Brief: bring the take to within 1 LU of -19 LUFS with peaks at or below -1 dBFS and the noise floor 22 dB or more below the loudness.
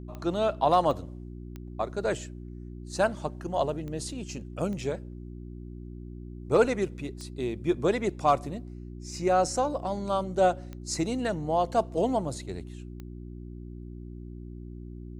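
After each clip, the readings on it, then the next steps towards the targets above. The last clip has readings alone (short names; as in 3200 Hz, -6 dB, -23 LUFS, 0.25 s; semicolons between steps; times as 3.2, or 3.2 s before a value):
clicks 8; hum 60 Hz; harmonics up to 360 Hz; hum level -38 dBFS; loudness -29.0 LUFS; peak -11.5 dBFS; loudness target -19.0 LUFS
-> de-click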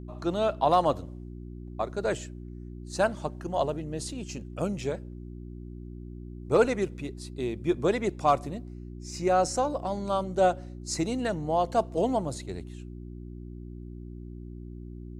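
clicks 0; hum 60 Hz; harmonics up to 360 Hz; hum level -38 dBFS
-> de-hum 60 Hz, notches 6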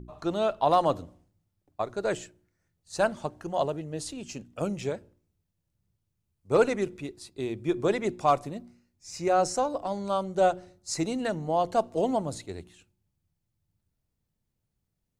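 hum none; loudness -28.5 LUFS; peak -11.0 dBFS; loudness target -19.0 LUFS
-> gain +9.5 dB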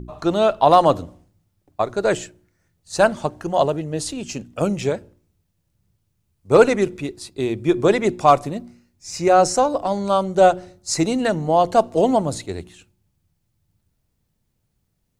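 loudness -19.0 LUFS; peak -1.5 dBFS; noise floor -71 dBFS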